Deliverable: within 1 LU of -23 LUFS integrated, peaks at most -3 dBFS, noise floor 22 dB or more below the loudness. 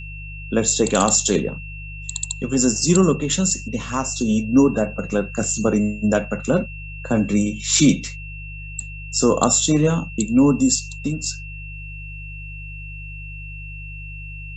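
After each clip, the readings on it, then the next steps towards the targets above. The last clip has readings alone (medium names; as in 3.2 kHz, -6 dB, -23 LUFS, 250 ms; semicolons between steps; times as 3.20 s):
hum 50 Hz; highest harmonic 150 Hz; hum level -33 dBFS; steady tone 2.7 kHz; tone level -36 dBFS; loudness -19.5 LUFS; peak level -3.5 dBFS; loudness target -23.0 LUFS
-> de-hum 50 Hz, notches 3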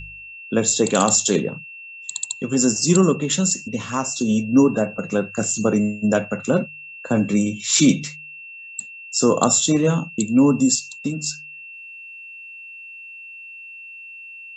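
hum not found; steady tone 2.7 kHz; tone level -36 dBFS
-> band-stop 2.7 kHz, Q 30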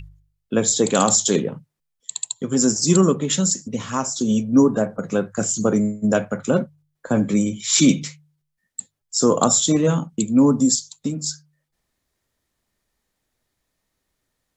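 steady tone not found; loudness -19.5 LUFS; peak level -3.5 dBFS; loudness target -23.0 LUFS
-> trim -3.5 dB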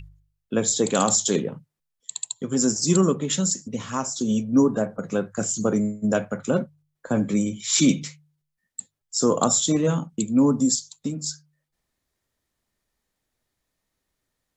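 loudness -23.0 LUFS; peak level -7.0 dBFS; noise floor -81 dBFS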